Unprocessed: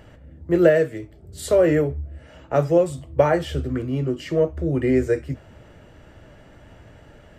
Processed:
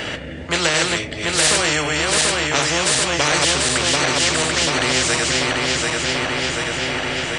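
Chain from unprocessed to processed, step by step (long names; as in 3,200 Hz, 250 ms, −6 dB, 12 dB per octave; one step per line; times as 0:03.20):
feedback delay that plays each chunk backwards 369 ms, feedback 73%, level −4.5 dB
meter weighting curve D
downsampling to 22,050 Hz
every bin compressed towards the loudest bin 4 to 1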